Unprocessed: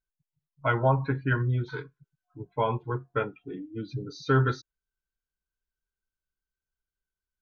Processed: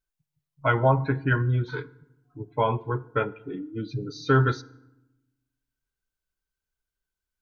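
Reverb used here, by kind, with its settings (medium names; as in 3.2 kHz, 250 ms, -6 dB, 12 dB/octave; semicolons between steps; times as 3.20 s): FDN reverb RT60 0.92 s, low-frequency decay 1.5×, high-frequency decay 0.65×, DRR 18 dB; trim +3 dB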